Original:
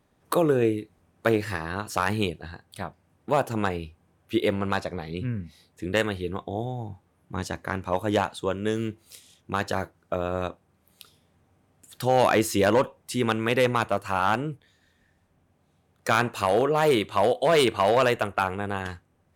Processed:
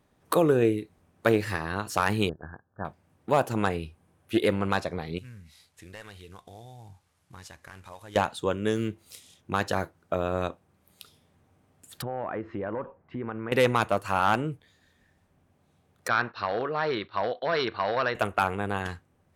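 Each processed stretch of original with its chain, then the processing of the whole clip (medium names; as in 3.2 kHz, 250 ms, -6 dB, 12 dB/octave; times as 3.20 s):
2.29–2.85 s: companding laws mixed up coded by A + brick-wall FIR low-pass 1.8 kHz
3.66–4.51 s: peaking EQ 10 kHz +6.5 dB 0.34 oct + loudspeaker Doppler distortion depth 0.11 ms
5.18–8.16 s: CVSD coder 64 kbps + peaking EQ 280 Hz -12.5 dB 2.7 oct + compression 2.5:1, threshold -46 dBFS
12.02–13.52 s: low-pass 1.8 kHz 24 dB/octave + compression 4:1, threshold -31 dBFS
16.08–18.15 s: gate -39 dBFS, range -8 dB + rippled Chebyshev low-pass 5.7 kHz, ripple 9 dB
whole clip: none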